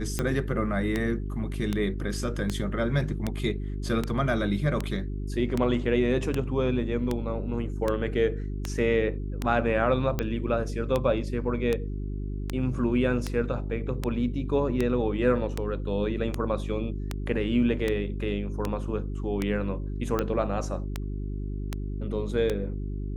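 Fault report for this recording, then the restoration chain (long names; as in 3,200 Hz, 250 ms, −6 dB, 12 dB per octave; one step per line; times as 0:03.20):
mains hum 50 Hz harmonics 8 −32 dBFS
scratch tick 78 rpm −13 dBFS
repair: click removal
hum removal 50 Hz, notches 8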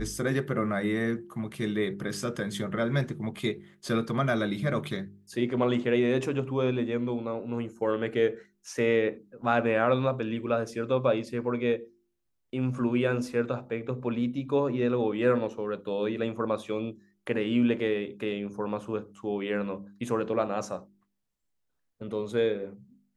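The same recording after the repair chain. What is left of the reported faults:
none of them is left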